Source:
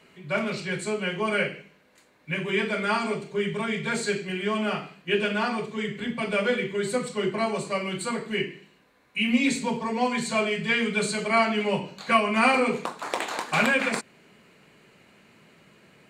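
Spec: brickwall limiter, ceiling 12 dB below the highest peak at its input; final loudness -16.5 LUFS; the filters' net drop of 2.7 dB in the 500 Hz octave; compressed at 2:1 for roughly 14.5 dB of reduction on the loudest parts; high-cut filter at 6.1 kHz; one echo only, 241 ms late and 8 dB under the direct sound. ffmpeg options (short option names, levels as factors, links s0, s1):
-af "lowpass=6100,equalizer=f=500:t=o:g=-3.5,acompressor=threshold=0.00631:ratio=2,alimiter=level_in=2.66:limit=0.0631:level=0:latency=1,volume=0.376,aecho=1:1:241:0.398,volume=16.8"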